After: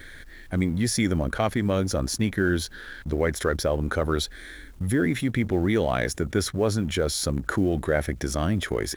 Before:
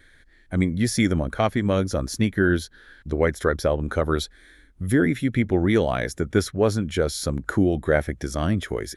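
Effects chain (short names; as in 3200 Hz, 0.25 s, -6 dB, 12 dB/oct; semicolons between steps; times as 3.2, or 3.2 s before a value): G.711 law mismatch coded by A; fast leveller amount 50%; gain -4.5 dB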